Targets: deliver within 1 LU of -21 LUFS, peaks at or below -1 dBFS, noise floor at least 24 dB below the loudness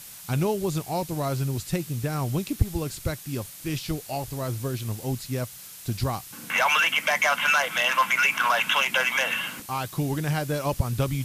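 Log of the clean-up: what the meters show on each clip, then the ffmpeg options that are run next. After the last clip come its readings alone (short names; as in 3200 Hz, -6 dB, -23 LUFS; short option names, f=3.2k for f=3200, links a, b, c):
noise floor -43 dBFS; noise floor target -50 dBFS; loudness -25.5 LUFS; peak -9.5 dBFS; loudness target -21.0 LUFS
-> -af "afftdn=nr=7:nf=-43"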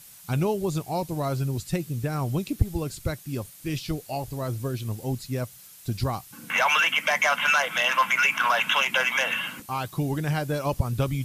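noise floor -48 dBFS; noise floor target -50 dBFS
-> -af "afftdn=nr=6:nf=-48"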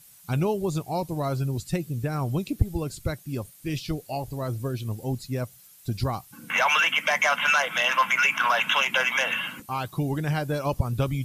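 noise floor -52 dBFS; loudness -25.5 LUFS; peak -9.5 dBFS; loudness target -21.0 LUFS
-> -af "volume=4.5dB"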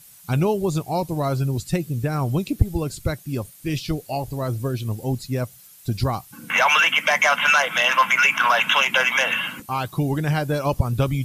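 loudness -21.0 LUFS; peak -5.0 dBFS; noise floor -48 dBFS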